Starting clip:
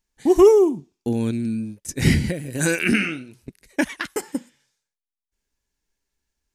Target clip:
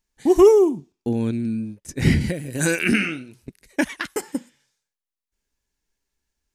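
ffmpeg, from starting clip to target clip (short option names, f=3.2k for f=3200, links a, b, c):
-filter_complex "[0:a]asettb=1/sr,asplit=3[a][b][c];[a]atrim=end=0.924[d];[b]atrim=start=0.92:end=2.21,asetpts=PTS-STARTPTS,afade=t=in:d=0.004:c=qsin,afade=t=out:st=1.286:d=0.004:c=qsin,highshelf=f=4.1k:g=-8[e];[c]atrim=start=2.206[f];[d][e]acrossfade=d=0.004:c1=hsin:c2=qsin[g];[g][f]acrossfade=d=0.004:c1=qsin:c2=hsin"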